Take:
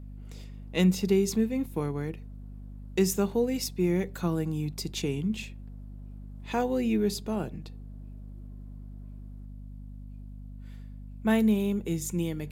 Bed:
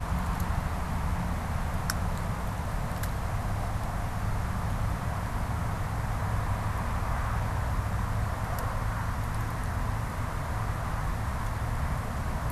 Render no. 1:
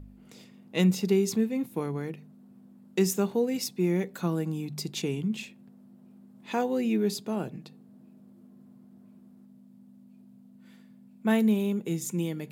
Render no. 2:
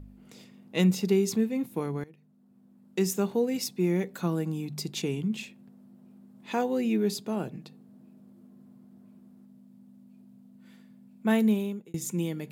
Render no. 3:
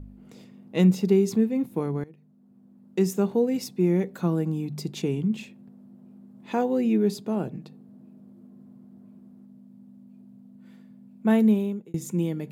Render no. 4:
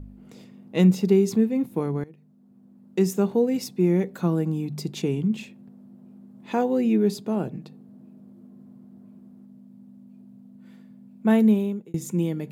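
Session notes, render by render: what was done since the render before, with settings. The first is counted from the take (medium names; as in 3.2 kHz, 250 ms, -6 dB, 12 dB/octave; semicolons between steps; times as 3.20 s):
de-hum 50 Hz, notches 3
2.04–3.34 s: fade in linear, from -19.5 dB; 11.51–11.94 s: fade out
tilt shelf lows +4.5 dB, about 1.3 kHz
trim +1.5 dB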